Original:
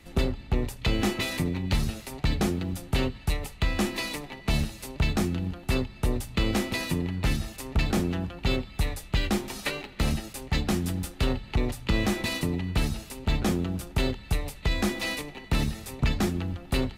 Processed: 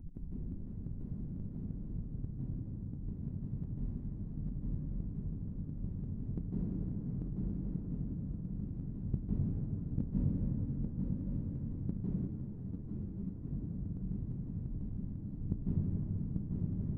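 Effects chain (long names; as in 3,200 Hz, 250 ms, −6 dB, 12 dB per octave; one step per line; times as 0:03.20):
spectral dynamics exaggerated over time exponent 1.5
inverse Chebyshev low-pass filter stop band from 850 Hz, stop band 70 dB
upward compression, threshold −47 dBFS
gate with flip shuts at −33 dBFS, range −28 dB
flanger 0.49 Hz, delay 8.2 ms, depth 5.7 ms, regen −73%
square-wave tremolo 1.1 Hz, depth 65%, duty 10%
feedback echo with a long and a short gap by turns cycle 1,122 ms, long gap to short 3 to 1, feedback 37%, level −3 dB
convolution reverb RT60 4.1 s, pre-delay 143 ms, DRR −8 dB
0:12.27–0:13.47: string-ensemble chorus
level +15 dB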